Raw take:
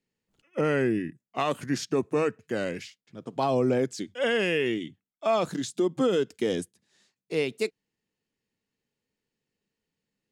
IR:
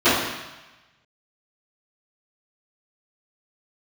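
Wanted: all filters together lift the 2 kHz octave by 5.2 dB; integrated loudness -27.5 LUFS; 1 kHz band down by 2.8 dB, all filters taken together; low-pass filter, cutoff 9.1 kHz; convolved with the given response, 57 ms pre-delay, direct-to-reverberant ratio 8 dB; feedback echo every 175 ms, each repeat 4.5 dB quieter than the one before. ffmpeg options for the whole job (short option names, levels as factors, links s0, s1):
-filter_complex "[0:a]lowpass=9100,equalizer=f=1000:t=o:g=-6.5,equalizer=f=2000:t=o:g=8.5,aecho=1:1:175|350|525|700|875|1050|1225|1400|1575:0.596|0.357|0.214|0.129|0.0772|0.0463|0.0278|0.0167|0.01,asplit=2[s0][s1];[1:a]atrim=start_sample=2205,adelay=57[s2];[s1][s2]afir=irnorm=-1:irlink=0,volume=0.0251[s3];[s0][s3]amix=inputs=2:normalize=0,volume=0.794"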